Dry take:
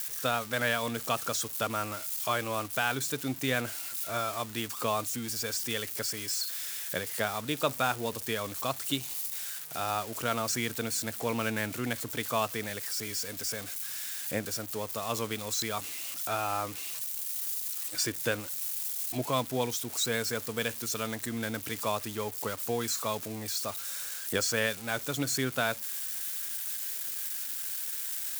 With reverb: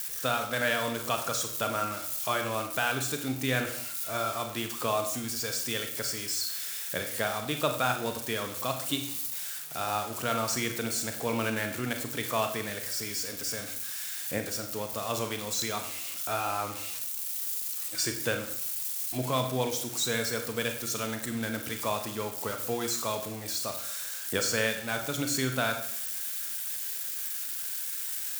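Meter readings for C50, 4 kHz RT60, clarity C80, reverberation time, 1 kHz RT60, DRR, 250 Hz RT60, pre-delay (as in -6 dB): 8.5 dB, 0.65 s, 11.0 dB, 0.65 s, 0.65 s, 5.0 dB, 0.60 s, 31 ms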